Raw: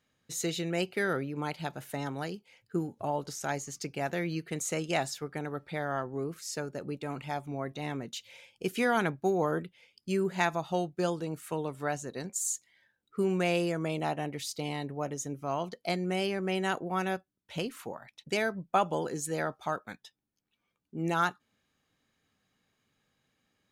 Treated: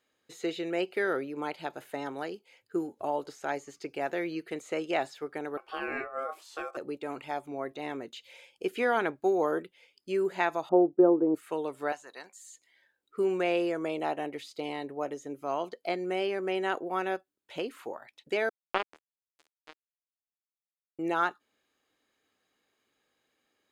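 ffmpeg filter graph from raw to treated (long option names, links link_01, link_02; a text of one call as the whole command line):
ffmpeg -i in.wav -filter_complex "[0:a]asettb=1/sr,asplit=3[link_01][link_02][link_03];[link_01]atrim=end=5.574[link_04];[link_02]atrim=start=5.57:end=6.77,asetpts=PTS-STARTPTS,afade=type=in:duration=0.004:curve=qsin,afade=type=out:start_time=1.196:duration=0.004:curve=qsin,asplit=2[link_05][link_06];[link_06]adelay=19,volume=-5dB[link_07];[link_05][link_07]amix=inputs=2:normalize=0,atrim=end_sample=52920,aeval=exprs='val(0)*sin(2*PI*940*n/s)':channel_layout=same[link_08];[link_03]atrim=start=6.766[link_09];[link_04][link_08]acrossfade=duration=0.004:curve1=hsin:curve2=qsin[link_10];[link_10][link_09]acrossfade=duration=0.004:curve1=qsin:curve2=hsin,asettb=1/sr,asplit=3[link_11][link_12][link_13];[link_11]atrim=end=10.694[link_14];[link_12]atrim=start=10.69:end=11.35,asetpts=PTS-STARTPTS,afade=type=in:duration=0.004:curve=qsin,afade=type=out:start_time=0.656:duration=0.004:curve=qsin,lowpass=frequency=1200:width=0.5412,lowpass=frequency=1200:width=1.3066,equalizer=frequency=300:width=1:gain=12[link_15];[link_13]atrim=start=11.346[link_16];[link_14][link_15]acrossfade=duration=0.004:curve1=hsin:curve2=qsin[link_17];[link_17][link_16]acrossfade=duration=0.004:curve1=qsin:curve2=hsin,asettb=1/sr,asplit=3[link_18][link_19][link_20];[link_18]atrim=end=11.924[link_21];[link_19]atrim=start=11.92:end=12.45,asetpts=PTS-STARTPTS,afade=type=in:duration=0.004:curve=qsin,afade=type=out:start_time=0.526:duration=0.004:curve=qsin,highpass=frequency=230:poles=1,lowshelf=frequency=630:width_type=q:width=1.5:gain=-11[link_22];[link_20]atrim=start=12.446[link_23];[link_21][link_22]acrossfade=duration=0.004:curve1=hsin:curve2=qsin[link_24];[link_24][link_23]acrossfade=duration=0.004:curve1=qsin:curve2=hsin,asettb=1/sr,asplit=3[link_25][link_26][link_27];[link_25]atrim=end=18.494[link_28];[link_26]atrim=start=18.49:end=20.99,asetpts=PTS-STARTPTS,afade=type=in:duration=0.004:curve=qsin,afade=type=out:start_time=2.496:duration=0.004:curve=qsin,acrossover=split=4500[link_29][link_30];[link_30]acompressor=threshold=-54dB:ratio=4:attack=1:release=60[link_31];[link_29][link_31]amix=inputs=2:normalize=0,acrusher=bits=2:mix=0:aa=0.5[link_32];[link_27]atrim=start=20.986[link_33];[link_28][link_32]acrossfade=duration=0.004:curve1=hsin:curve2=qsin[link_34];[link_34][link_33]acrossfade=duration=0.004:curve1=qsin:curve2=hsin,acrossover=split=3600[link_35][link_36];[link_36]acompressor=threshold=-55dB:ratio=4:attack=1:release=60[link_37];[link_35][link_37]amix=inputs=2:normalize=0,lowshelf=frequency=240:width_type=q:width=1.5:gain=-11,bandreject=frequency=5700:width=12" out.wav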